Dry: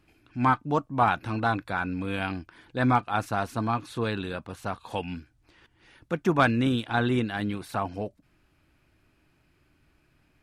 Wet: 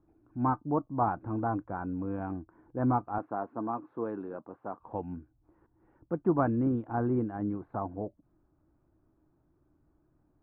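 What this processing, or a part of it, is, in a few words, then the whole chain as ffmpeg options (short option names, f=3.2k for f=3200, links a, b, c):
under water: -filter_complex "[0:a]asettb=1/sr,asplit=3[a][b][c];[a]atrim=end=3.184[d];[b]atrim=start=3.18:end=4.8,asetpts=PTS-STARTPTS,afade=t=in:d=0.004:c=qsin,afade=t=out:st=1.616:d=0.004:c=qsin,highpass=250[e];[c]atrim=start=4.796[f];[d][e]acrossfade=d=0.004:c1=hsin:c2=qsin[g];[g][f]acrossfade=d=0.004:c1=qsin:c2=hsin,lowpass=f=1.1k:w=0.5412,lowpass=f=1.1k:w=1.3066,equalizer=f=320:t=o:w=0.32:g=6,volume=-4.5dB"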